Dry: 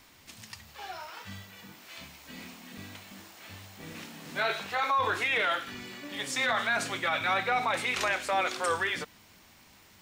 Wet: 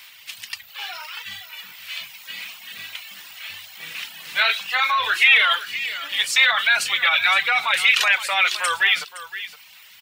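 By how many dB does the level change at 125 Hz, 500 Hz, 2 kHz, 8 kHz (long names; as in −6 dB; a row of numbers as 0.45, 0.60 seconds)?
below −10 dB, −3.0 dB, +12.5 dB, +9.5 dB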